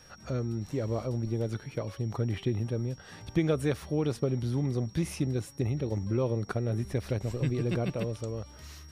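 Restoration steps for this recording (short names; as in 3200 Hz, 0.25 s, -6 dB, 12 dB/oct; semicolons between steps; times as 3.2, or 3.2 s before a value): notch 5600 Hz, Q 30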